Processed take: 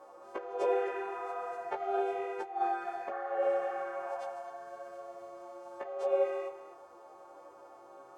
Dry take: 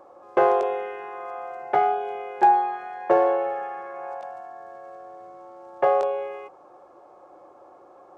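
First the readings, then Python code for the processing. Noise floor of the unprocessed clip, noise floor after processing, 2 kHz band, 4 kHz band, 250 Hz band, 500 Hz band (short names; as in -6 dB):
-51 dBFS, -54 dBFS, -8.5 dB, n/a, -10.0 dB, -8.0 dB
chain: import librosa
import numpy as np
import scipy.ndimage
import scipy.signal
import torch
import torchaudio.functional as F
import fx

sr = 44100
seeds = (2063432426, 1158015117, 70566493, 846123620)

y = fx.freq_snap(x, sr, grid_st=2)
y = fx.dynamic_eq(y, sr, hz=540.0, q=1.8, threshold_db=-32.0, ratio=4.0, max_db=4)
y = fx.over_compress(y, sr, threshold_db=-23.0, ratio=-0.5)
y = fx.chorus_voices(y, sr, voices=4, hz=1.3, base_ms=15, depth_ms=3.0, mix_pct=40)
y = fx.spec_repair(y, sr, seeds[0], start_s=3.13, length_s=0.62, low_hz=590.0, high_hz=2200.0, source='after')
y = y + 10.0 ** (-14.0 / 20.0) * np.pad(y, (int(258 * sr / 1000.0), 0))[:len(y)]
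y = F.gain(torch.from_numpy(y), -5.5).numpy()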